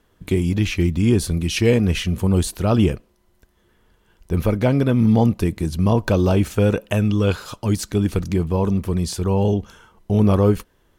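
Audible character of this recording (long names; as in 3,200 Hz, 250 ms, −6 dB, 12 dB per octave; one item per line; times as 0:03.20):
background noise floor −61 dBFS
spectral slope −7.0 dB per octave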